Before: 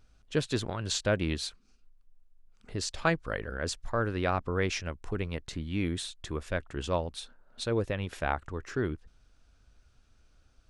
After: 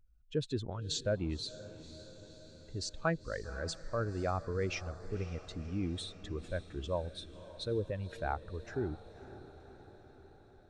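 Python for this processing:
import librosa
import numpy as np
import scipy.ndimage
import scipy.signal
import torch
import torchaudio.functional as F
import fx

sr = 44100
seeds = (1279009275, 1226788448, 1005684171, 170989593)

y = fx.spec_expand(x, sr, power=1.7)
y = fx.echo_diffused(y, sr, ms=532, feedback_pct=63, wet_db=-15)
y = y * librosa.db_to_amplitude(-5.0)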